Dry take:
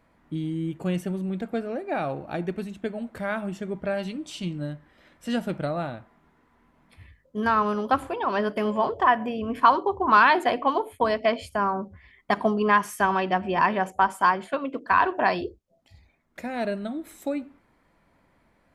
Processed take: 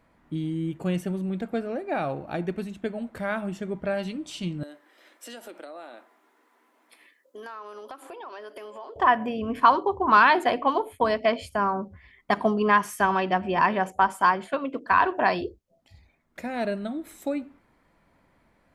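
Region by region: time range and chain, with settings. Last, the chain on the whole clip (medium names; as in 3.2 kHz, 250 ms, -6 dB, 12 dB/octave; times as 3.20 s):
4.63–8.96 s: steep high-pass 290 Hz + treble shelf 5.5 kHz +10 dB + compression 5:1, threshold -39 dBFS
whole clip: none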